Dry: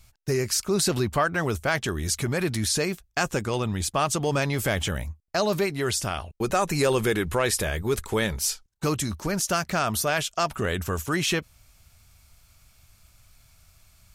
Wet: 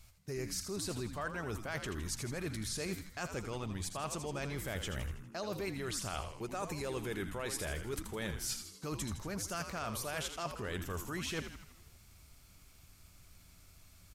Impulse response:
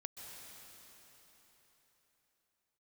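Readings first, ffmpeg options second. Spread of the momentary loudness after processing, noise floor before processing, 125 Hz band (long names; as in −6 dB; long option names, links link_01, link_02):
4 LU, −62 dBFS, −13.0 dB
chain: -filter_complex "[0:a]areverse,acompressor=threshold=-32dB:ratio=12,areverse,asplit=8[link_01][link_02][link_03][link_04][link_05][link_06][link_07][link_08];[link_02]adelay=81,afreqshift=-100,volume=-8.5dB[link_09];[link_03]adelay=162,afreqshift=-200,volume=-13.7dB[link_10];[link_04]adelay=243,afreqshift=-300,volume=-18.9dB[link_11];[link_05]adelay=324,afreqshift=-400,volume=-24.1dB[link_12];[link_06]adelay=405,afreqshift=-500,volume=-29.3dB[link_13];[link_07]adelay=486,afreqshift=-600,volume=-34.5dB[link_14];[link_08]adelay=567,afreqshift=-700,volume=-39.7dB[link_15];[link_01][link_09][link_10][link_11][link_12][link_13][link_14][link_15]amix=inputs=8:normalize=0,volume=-4dB"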